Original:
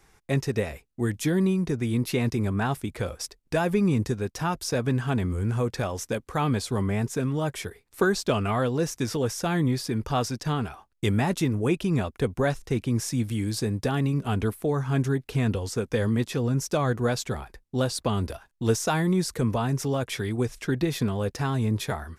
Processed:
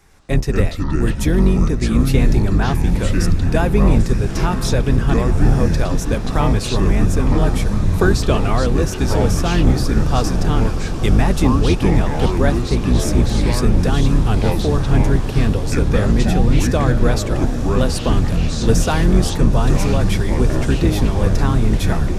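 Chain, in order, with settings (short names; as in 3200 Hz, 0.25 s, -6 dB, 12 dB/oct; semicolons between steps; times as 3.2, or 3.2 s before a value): octaver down 2 oct, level +4 dB; diffused feedback echo 0.981 s, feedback 72%, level -12 dB; echoes that change speed 0.111 s, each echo -6 st, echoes 2; gain +5 dB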